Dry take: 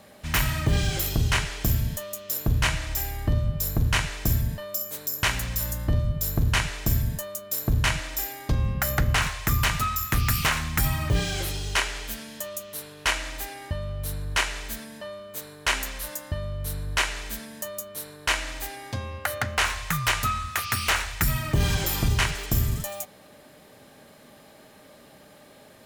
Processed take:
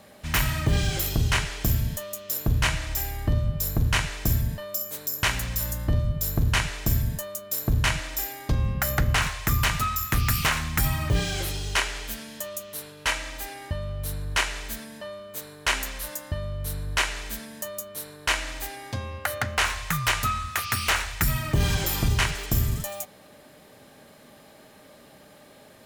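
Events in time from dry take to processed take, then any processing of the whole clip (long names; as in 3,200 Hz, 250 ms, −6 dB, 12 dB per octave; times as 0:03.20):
0:12.91–0:13.45: notch comb filter 360 Hz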